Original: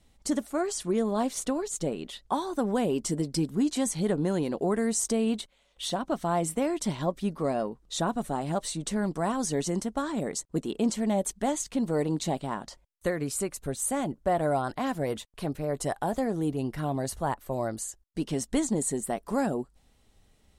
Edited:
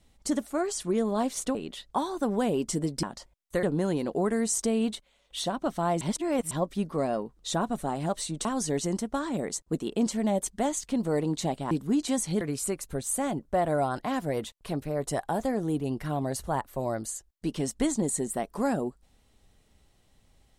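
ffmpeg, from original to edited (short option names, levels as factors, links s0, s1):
-filter_complex "[0:a]asplit=9[s0][s1][s2][s3][s4][s5][s6][s7][s8];[s0]atrim=end=1.552[s9];[s1]atrim=start=1.908:end=3.392[s10];[s2]atrim=start=12.538:end=13.142[s11];[s3]atrim=start=4.088:end=6.472[s12];[s4]atrim=start=6.468:end=6.972,asetpts=PTS-STARTPTS,areverse[s13];[s5]atrim=start=6.968:end=8.912[s14];[s6]atrim=start=9.278:end=12.542[s15];[s7]atrim=start=3.388:end=4.092[s16];[s8]atrim=start=13.138[s17];[s9][s10]acrossfade=d=0.004:c1=hsin:c2=hsin[s18];[s18][s11]acrossfade=d=0.004:c1=hsin:c2=hsin[s19];[s19][s12]acrossfade=d=0.004:c1=hsin:c2=hsin[s20];[s20][s13]acrossfade=d=0.004:c1=hsin:c2=hsin[s21];[s21][s14]acrossfade=d=0.004:c1=hsin:c2=hsin[s22];[s22][s15]acrossfade=d=0.004:c1=hsin:c2=hsin[s23];[s23][s16]acrossfade=d=0.004:c1=hsin:c2=hsin[s24];[s24][s17]acrossfade=d=0.004:c1=hsin:c2=hsin"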